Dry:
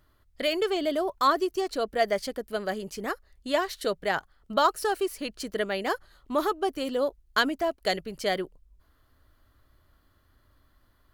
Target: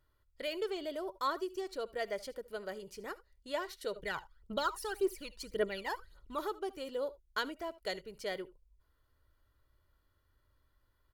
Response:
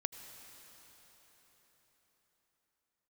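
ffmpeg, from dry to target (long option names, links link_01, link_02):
-filter_complex "[1:a]atrim=start_sample=2205,atrim=end_sample=4410,asetrate=52920,aresample=44100[link_01];[0:a][link_01]afir=irnorm=-1:irlink=0,asettb=1/sr,asplit=3[link_02][link_03][link_04];[link_02]atrim=end=3.964[link_05];[link_03]atrim=start=3.96:end=6.39,asetpts=PTS-STARTPTS,afade=type=in:duration=0.004:curve=qsin,afade=type=out:start_time=2.426:duration=0.004:curve=qsin,aphaser=in_gain=1:out_gain=1:delay=1.2:decay=0.68:speed=1.8:type=triangular[link_06];[link_04]atrim=start=6.386[link_07];[link_05][link_06]acrossfade=duration=0.004:curve1=hsin:curve2=qsin[link_08];[link_08][link_07]acrossfade=duration=0.004:curve1=qsin:curve2=hsin,aecho=1:1:2.1:0.41,volume=-9dB"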